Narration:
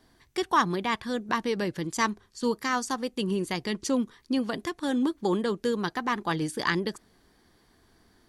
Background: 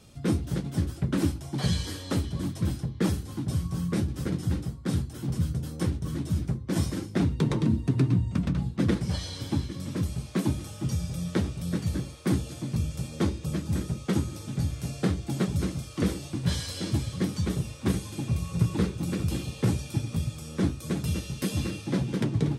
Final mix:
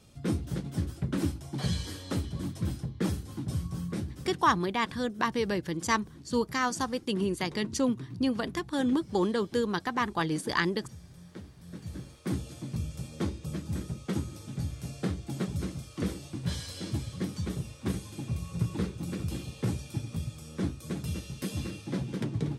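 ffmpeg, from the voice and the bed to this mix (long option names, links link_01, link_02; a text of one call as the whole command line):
ffmpeg -i stem1.wav -i stem2.wav -filter_complex "[0:a]adelay=3900,volume=-1dB[link_01];[1:a]volume=9dB,afade=type=out:start_time=3.64:duration=0.96:silence=0.188365,afade=type=in:start_time=11.6:duration=0.83:silence=0.223872[link_02];[link_01][link_02]amix=inputs=2:normalize=0" out.wav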